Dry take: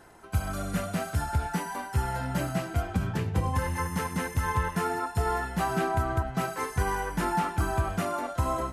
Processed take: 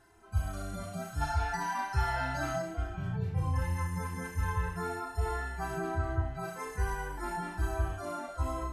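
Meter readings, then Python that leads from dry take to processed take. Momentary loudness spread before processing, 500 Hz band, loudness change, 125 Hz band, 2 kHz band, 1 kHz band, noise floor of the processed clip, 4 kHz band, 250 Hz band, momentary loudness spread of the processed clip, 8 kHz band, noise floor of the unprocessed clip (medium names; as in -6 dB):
3 LU, -6.0 dB, -5.0 dB, -4.0 dB, -4.0 dB, -6.0 dB, -45 dBFS, -6.5 dB, -8.0 dB, 6 LU, -7.5 dB, -41 dBFS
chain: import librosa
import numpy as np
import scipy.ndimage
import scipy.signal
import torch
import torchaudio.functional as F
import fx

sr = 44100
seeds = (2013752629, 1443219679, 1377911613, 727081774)

y = fx.hpss_only(x, sr, part='harmonic')
y = fx.low_shelf(y, sr, hz=78.0, db=12.0)
y = fx.spec_box(y, sr, start_s=1.21, length_s=1.41, low_hz=620.0, high_hz=6800.0, gain_db=9)
y = fx.room_flutter(y, sr, wall_m=5.8, rt60_s=0.34)
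y = y * librosa.db_to_amplitude(-7.5)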